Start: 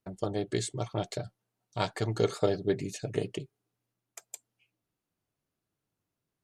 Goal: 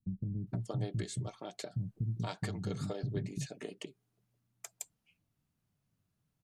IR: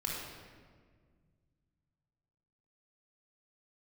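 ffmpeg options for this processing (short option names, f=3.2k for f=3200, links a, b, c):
-filter_complex "[0:a]lowshelf=f=280:t=q:w=1.5:g=8,acompressor=threshold=-32dB:ratio=6,acrossover=split=270[a][b];[b]adelay=470[c];[a][c]amix=inputs=2:normalize=0"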